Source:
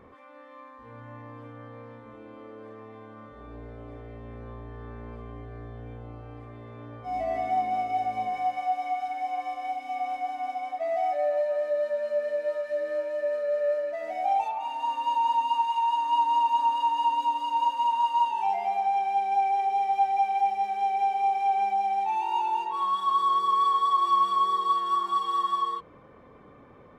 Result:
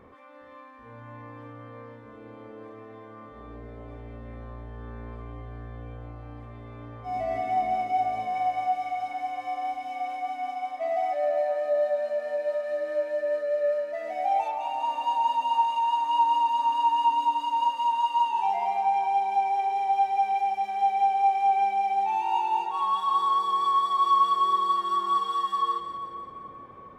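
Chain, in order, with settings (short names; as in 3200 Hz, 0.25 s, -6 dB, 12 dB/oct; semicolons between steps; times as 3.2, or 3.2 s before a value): split-band echo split 1100 Hz, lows 0.415 s, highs 0.174 s, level -9 dB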